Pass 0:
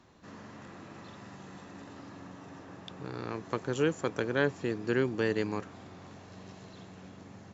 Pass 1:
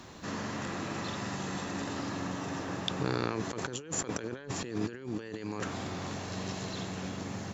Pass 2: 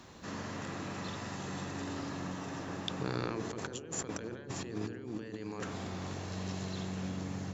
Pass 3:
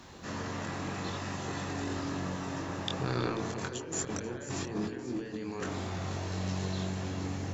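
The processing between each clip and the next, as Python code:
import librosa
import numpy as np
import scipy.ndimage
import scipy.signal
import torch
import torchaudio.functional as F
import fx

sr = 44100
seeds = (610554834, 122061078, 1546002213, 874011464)

y1 = fx.high_shelf(x, sr, hz=3500.0, db=7.5)
y1 = fx.over_compress(y1, sr, threshold_db=-41.0, ratio=-1.0)
y1 = F.gain(torch.from_numpy(y1), 5.0).numpy()
y2 = fx.echo_wet_lowpass(y1, sr, ms=64, feedback_pct=75, hz=520.0, wet_db=-8.0)
y2 = F.gain(torch.from_numpy(y2), -4.5).numpy()
y3 = fx.echo_stepped(y2, sr, ms=162, hz=780.0, octaves=1.4, feedback_pct=70, wet_db=-6)
y3 = fx.chorus_voices(y3, sr, voices=4, hz=0.81, base_ms=23, depth_ms=1.7, mix_pct=40)
y3 = F.gain(torch.from_numpy(y3), 6.0).numpy()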